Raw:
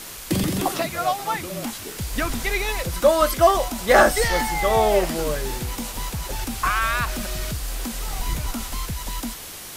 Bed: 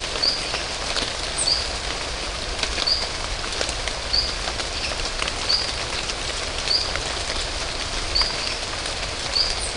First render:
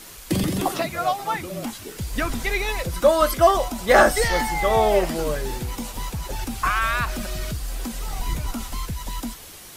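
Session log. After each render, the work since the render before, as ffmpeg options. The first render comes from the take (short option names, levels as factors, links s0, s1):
-af "afftdn=nr=6:nf=-37"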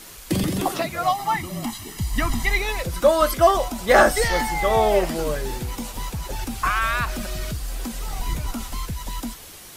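-filter_complex "[0:a]asettb=1/sr,asplit=3[s0][s1][s2];[s0]atrim=end=1.034[s3];[s1]atrim=start=1.03:end=2.59,asetpts=PTS-STARTPTS,afade=t=in:d=0.004:c=qsin,afade=t=out:st=1.556:d=0.004:c=qsin,aecho=1:1:1:0.73,atrim=end_sample=68796[s4];[s2]atrim=start=2.586[s5];[s3][s4]acrossfade=d=0.004:c1=hsin:c2=qsin[s6];[s6][s5]acrossfade=d=0.004:c1=qsin:c2=hsin"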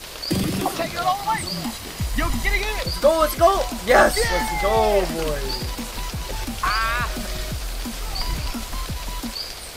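-filter_complex "[1:a]volume=0.316[s0];[0:a][s0]amix=inputs=2:normalize=0"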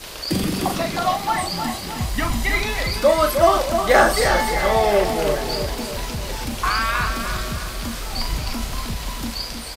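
-filter_complex "[0:a]asplit=2[s0][s1];[s1]adelay=39,volume=0.447[s2];[s0][s2]amix=inputs=2:normalize=0,asplit=2[s3][s4];[s4]adelay=310,lowpass=f=4600:p=1,volume=0.447,asplit=2[s5][s6];[s6]adelay=310,lowpass=f=4600:p=1,volume=0.5,asplit=2[s7][s8];[s8]adelay=310,lowpass=f=4600:p=1,volume=0.5,asplit=2[s9][s10];[s10]adelay=310,lowpass=f=4600:p=1,volume=0.5,asplit=2[s11][s12];[s12]adelay=310,lowpass=f=4600:p=1,volume=0.5,asplit=2[s13][s14];[s14]adelay=310,lowpass=f=4600:p=1,volume=0.5[s15];[s5][s7][s9][s11][s13][s15]amix=inputs=6:normalize=0[s16];[s3][s16]amix=inputs=2:normalize=0"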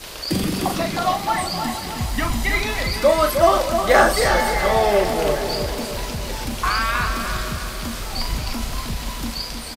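-filter_complex "[0:a]asplit=2[s0][s1];[s1]adelay=472.3,volume=0.224,highshelf=f=4000:g=-10.6[s2];[s0][s2]amix=inputs=2:normalize=0"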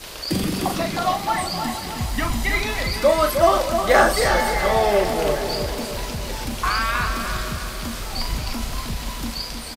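-af "volume=0.891"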